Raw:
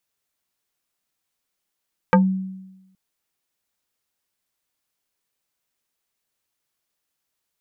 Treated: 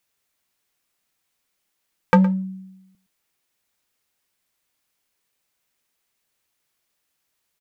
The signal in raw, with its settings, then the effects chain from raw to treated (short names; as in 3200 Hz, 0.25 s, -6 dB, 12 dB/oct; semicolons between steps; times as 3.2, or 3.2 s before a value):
FM tone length 0.82 s, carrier 189 Hz, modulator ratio 3.72, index 2.3, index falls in 0.15 s exponential, decay 1.02 s, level -9 dB
bell 2200 Hz +2.5 dB; in parallel at -4.5 dB: overloaded stage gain 21.5 dB; on the sum: echo 0.114 s -17 dB